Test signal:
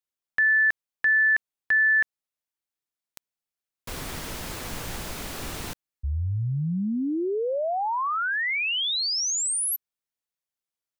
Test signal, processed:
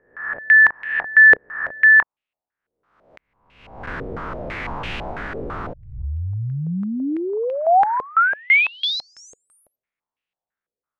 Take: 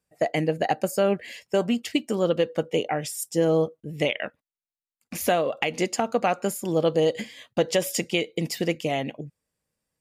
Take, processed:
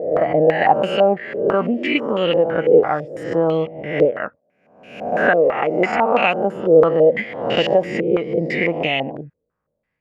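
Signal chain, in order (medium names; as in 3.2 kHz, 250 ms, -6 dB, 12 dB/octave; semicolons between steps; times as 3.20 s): reverse spectral sustain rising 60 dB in 0.81 s; step-sequenced low-pass 6 Hz 470–2700 Hz; trim +1.5 dB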